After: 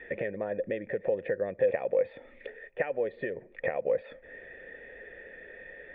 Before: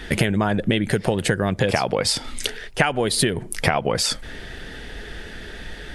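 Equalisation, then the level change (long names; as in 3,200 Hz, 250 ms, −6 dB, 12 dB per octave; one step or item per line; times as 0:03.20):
low-shelf EQ 190 Hz −11 dB
dynamic equaliser 2,400 Hz, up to −6 dB, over −38 dBFS, Q 0.74
formant resonators in series e
+3.0 dB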